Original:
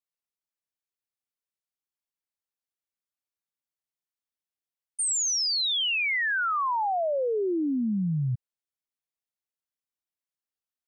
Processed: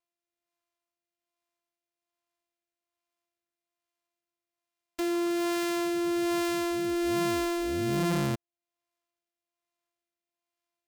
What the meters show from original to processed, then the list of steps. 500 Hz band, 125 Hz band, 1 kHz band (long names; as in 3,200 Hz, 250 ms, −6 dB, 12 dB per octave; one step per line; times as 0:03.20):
+0.5 dB, −3.5 dB, −5.5 dB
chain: samples sorted by size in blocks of 128 samples
rotating-speaker cabinet horn 1.2 Hz
one half of a high-frequency compander encoder only